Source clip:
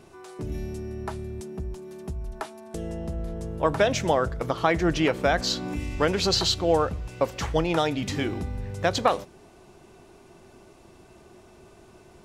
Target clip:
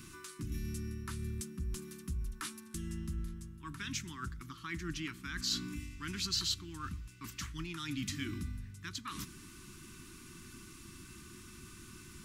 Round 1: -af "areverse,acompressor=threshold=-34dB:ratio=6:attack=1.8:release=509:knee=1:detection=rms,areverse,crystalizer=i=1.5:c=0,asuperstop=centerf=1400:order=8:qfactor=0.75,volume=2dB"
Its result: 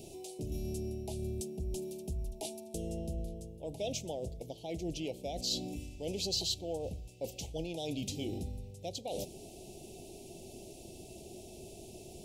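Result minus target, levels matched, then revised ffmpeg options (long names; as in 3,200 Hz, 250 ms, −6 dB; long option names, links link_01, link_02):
500 Hz band +14.5 dB
-af "areverse,acompressor=threshold=-34dB:ratio=6:attack=1.8:release=509:knee=1:detection=rms,areverse,crystalizer=i=1.5:c=0,asuperstop=centerf=600:order=8:qfactor=0.75,volume=2dB"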